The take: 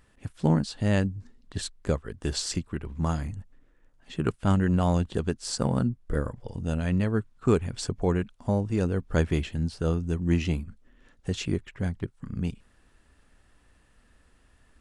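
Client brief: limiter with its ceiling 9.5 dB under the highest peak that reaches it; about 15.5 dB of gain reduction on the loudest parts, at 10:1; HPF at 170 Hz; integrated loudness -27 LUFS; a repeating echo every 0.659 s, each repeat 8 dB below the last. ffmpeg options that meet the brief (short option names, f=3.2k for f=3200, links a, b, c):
-af "highpass=170,acompressor=threshold=-35dB:ratio=10,alimiter=level_in=6dB:limit=-24dB:level=0:latency=1,volume=-6dB,aecho=1:1:659|1318|1977|2636|3295:0.398|0.159|0.0637|0.0255|0.0102,volume=16dB"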